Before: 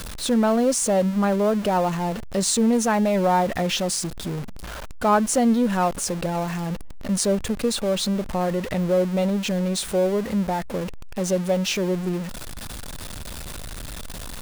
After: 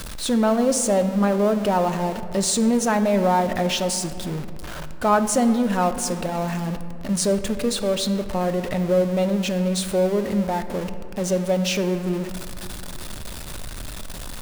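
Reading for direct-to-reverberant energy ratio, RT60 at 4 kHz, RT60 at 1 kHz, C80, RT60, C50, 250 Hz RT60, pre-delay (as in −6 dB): 9.0 dB, 1.3 s, 2.3 s, 12.0 dB, 2.4 s, 11.0 dB, 3.1 s, 3 ms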